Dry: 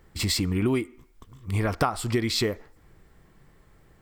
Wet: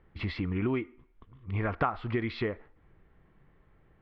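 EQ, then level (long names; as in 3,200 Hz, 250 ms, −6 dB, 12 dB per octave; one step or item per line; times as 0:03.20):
low-pass filter 3,200 Hz 24 dB per octave
dynamic equaliser 1,500 Hz, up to +4 dB, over −42 dBFS, Q 0.88
high-frequency loss of the air 120 metres
−5.5 dB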